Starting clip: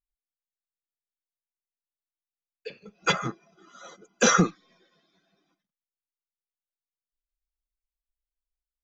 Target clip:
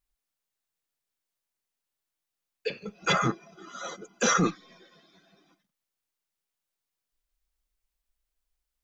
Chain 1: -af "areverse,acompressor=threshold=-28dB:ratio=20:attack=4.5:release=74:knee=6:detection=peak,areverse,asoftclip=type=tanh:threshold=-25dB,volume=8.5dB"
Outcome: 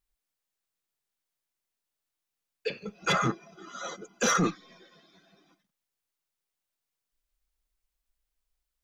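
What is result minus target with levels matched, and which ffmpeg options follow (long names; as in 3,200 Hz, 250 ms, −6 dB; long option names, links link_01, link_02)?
soft clipping: distortion +19 dB
-af "areverse,acompressor=threshold=-28dB:ratio=20:attack=4.5:release=74:knee=6:detection=peak,areverse,asoftclip=type=tanh:threshold=-14dB,volume=8.5dB"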